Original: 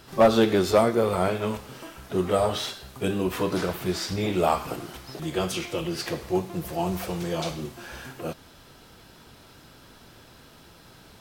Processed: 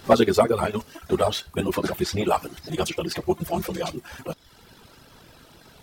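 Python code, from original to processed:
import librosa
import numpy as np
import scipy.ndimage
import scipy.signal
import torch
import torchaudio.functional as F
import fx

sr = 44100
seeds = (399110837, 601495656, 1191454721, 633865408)

y = fx.dereverb_blind(x, sr, rt60_s=1.3)
y = fx.stretch_grains(y, sr, factor=0.52, grain_ms=41.0)
y = y * librosa.db_to_amplitude(4.5)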